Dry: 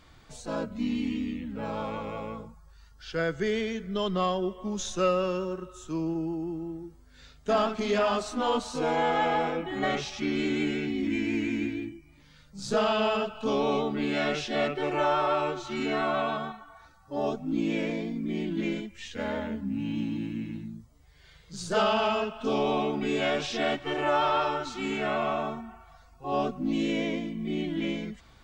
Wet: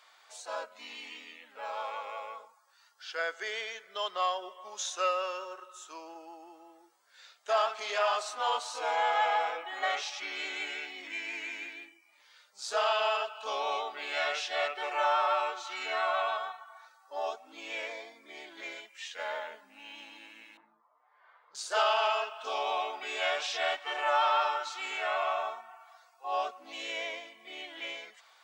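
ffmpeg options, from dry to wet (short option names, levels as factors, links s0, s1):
-filter_complex "[0:a]asettb=1/sr,asplit=3[s0][s1][s2];[s0]atrim=end=17.874[s3];[s1]atrim=start=17.87:end=18.78,asetpts=PTS-STARTPTS,afade=t=in:d=0.004:c=qsin,afade=t=out:st=0.906:d=0.004:c=qsin,equalizer=f=2800:t=o:w=0.22:g=-10.5[s4];[s2]atrim=start=18.776[s5];[s3][s4]acrossfade=d=0.004:c1=hsin:c2=qsin[s6];[s6][s5]acrossfade=d=0.004:c1=qsin:c2=hsin,asettb=1/sr,asplit=3[s7][s8][s9];[s7]atrim=end=20.574[s10];[s8]atrim=start=20.57:end=21.55,asetpts=PTS-STARTPTS,afade=t=in:d=0.004:c=qsin,afade=t=out:st=0.976:d=0.004:c=qsin,lowpass=f=1100:t=q:w=3.2[s11];[s9]atrim=start=21.546[s12];[s10][s11]acrossfade=d=0.004:c1=hsin:c2=qsin[s13];[s13][s12]acrossfade=d=0.004:c1=qsin:c2=hsin,highpass=f=650:w=0.5412,highpass=f=650:w=1.3066"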